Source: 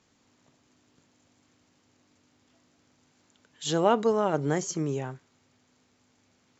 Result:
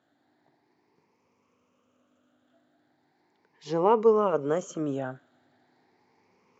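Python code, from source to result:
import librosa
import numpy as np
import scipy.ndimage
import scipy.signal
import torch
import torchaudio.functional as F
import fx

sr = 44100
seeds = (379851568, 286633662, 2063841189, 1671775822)

p1 = fx.spec_ripple(x, sr, per_octave=0.82, drift_hz=0.38, depth_db=12)
p2 = fx.bandpass_q(p1, sr, hz=640.0, q=0.57)
p3 = fx.rider(p2, sr, range_db=5, speed_s=2.0)
p4 = p2 + F.gain(torch.from_numpy(p3), 1.0).numpy()
y = F.gain(torch.from_numpy(p4), -5.5).numpy()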